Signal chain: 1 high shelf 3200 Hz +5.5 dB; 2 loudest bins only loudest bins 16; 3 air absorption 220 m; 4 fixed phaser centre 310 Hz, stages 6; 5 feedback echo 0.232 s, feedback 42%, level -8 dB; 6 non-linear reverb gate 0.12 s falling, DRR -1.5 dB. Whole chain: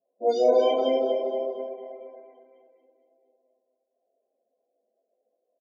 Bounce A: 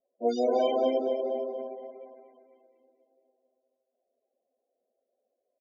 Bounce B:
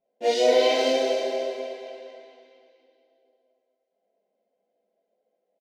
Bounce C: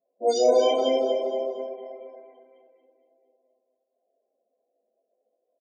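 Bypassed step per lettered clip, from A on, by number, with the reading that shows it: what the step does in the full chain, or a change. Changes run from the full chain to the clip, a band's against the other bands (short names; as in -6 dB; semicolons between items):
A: 6, echo-to-direct 2.5 dB to -7.0 dB; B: 2, 4 kHz band +9.5 dB; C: 3, 4 kHz band +4.5 dB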